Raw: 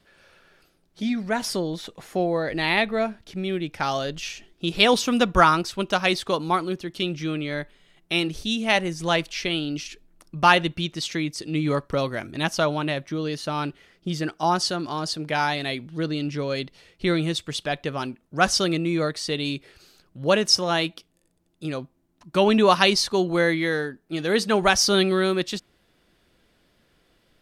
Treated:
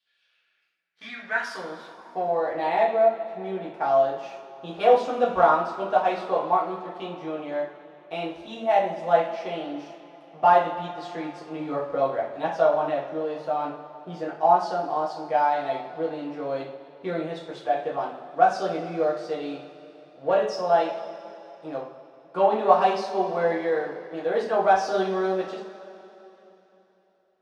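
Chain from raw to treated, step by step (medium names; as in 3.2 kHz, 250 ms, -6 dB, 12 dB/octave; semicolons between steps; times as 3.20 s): waveshaping leveller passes 2; two-slope reverb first 0.43 s, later 3.4 s, from -18 dB, DRR -4.5 dB; band-pass sweep 3.4 kHz -> 700 Hz, 0.12–2.73 s; trim -7 dB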